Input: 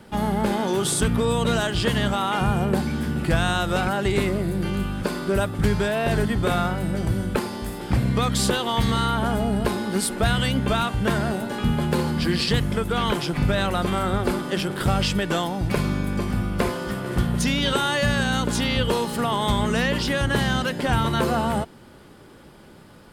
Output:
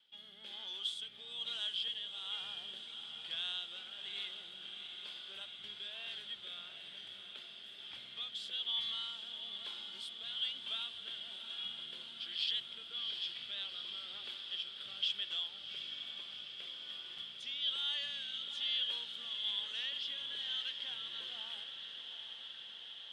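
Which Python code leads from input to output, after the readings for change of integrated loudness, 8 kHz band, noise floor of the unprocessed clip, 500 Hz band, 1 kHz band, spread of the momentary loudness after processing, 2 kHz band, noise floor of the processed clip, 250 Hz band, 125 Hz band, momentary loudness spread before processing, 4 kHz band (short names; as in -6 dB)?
-16.5 dB, -29.0 dB, -47 dBFS, -38.0 dB, -32.5 dB, 11 LU, -22.0 dB, -52 dBFS, under -40 dB, under -40 dB, 4 LU, -6.0 dB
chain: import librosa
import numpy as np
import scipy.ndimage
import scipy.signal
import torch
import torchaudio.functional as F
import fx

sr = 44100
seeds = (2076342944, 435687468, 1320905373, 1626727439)

y = fx.bandpass_q(x, sr, hz=3300.0, q=13.0)
y = fx.rotary(y, sr, hz=1.1)
y = fx.echo_diffused(y, sr, ms=754, feedback_pct=77, wet_db=-8)
y = y * 10.0 ** (1.5 / 20.0)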